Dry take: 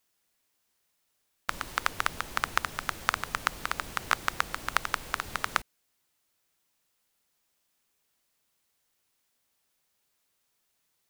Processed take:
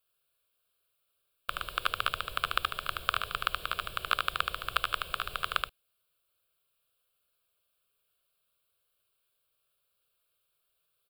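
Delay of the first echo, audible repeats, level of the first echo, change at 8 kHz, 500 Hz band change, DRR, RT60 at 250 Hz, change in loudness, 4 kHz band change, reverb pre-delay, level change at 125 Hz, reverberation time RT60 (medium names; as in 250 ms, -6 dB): 75 ms, 1, -4.0 dB, -8.5 dB, -1.0 dB, no reverb, no reverb, -1.0 dB, +3.5 dB, no reverb, -2.5 dB, no reverb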